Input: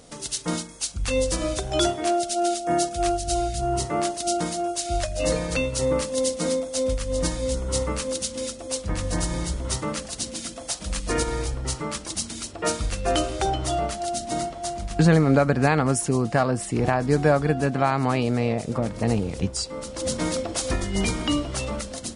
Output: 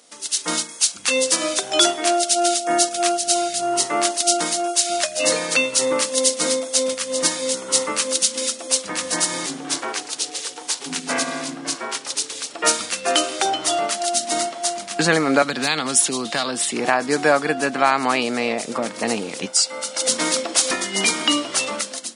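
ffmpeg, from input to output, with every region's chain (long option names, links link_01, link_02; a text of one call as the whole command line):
ffmpeg -i in.wav -filter_complex "[0:a]asettb=1/sr,asplit=3[link_01][link_02][link_03];[link_01]atrim=end=9.464[link_04];[link_02]atrim=start=9.46:end=12.51,asetpts=PTS-STARTPTS,afade=type=in:duration=0.004:curve=qsin,afade=type=out:start_time=3.046:duration=0.004:curve=qsin,highshelf=frequency=8900:gain=-8.5,aeval=exprs='val(0)*sin(2*PI*210*n/s)':channel_layout=same[link_05];[link_03]atrim=start=12.506[link_06];[link_04][link_05]acrossfade=duration=0.004:curve1=hsin:curve2=qsin[link_07];[link_07][link_06]acrossfade=duration=0.004:curve1=qsin:curve2=hsin,asettb=1/sr,asplit=3[link_08][link_09][link_10];[link_08]atrim=end=15.424[link_11];[link_09]atrim=start=15.42:end=16.73,asetpts=PTS-STARTPTS,afade=type=in:duration=0.004:curve=qsin,afade=type=out:start_time=1.306:duration=0.004:curve=qsin,equalizer=frequency=3600:width=2.7:gain=12,acrossover=split=210|3000[link_12][link_13][link_14];[link_13]acompressor=threshold=-25dB:ratio=6:attack=3.2:release=140:knee=2.83:detection=peak[link_15];[link_12][link_15][link_14]amix=inputs=3:normalize=0,asoftclip=type=hard:threshold=-14.5dB[link_16];[link_10]atrim=start=16.726[link_17];[link_11][link_16]acrossfade=duration=0.004:curve1=hsin:curve2=qsin[link_18];[link_18][link_17]acrossfade=duration=0.004:curve1=qsin:curve2=hsin,asettb=1/sr,asplit=3[link_19][link_20][link_21];[link_19]atrim=end=19.464[link_22];[link_20]atrim=start=19.46:end=20.08,asetpts=PTS-STARTPTS,afade=type=in:duration=0.004:curve=qsin,afade=type=out:start_time=0.616:duration=0.004:curve=qsin,highpass=frequency=270:poles=1,aecho=1:1:1.4:0.54,atrim=end_sample=27342[link_23];[link_21]atrim=start=20.076[link_24];[link_22][link_23]acrossfade=duration=0.004:curve1=hsin:curve2=qsin[link_25];[link_25][link_24]acrossfade=duration=0.004:curve1=qsin:curve2=hsin,highpass=frequency=260:width=0.5412,highpass=frequency=260:width=1.3066,equalizer=frequency=400:width_type=o:width=2.5:gain=-10,dynaudnorm=framelen=100:gausssize=7:maxgain=10dB,volume=1.5dB" out.wav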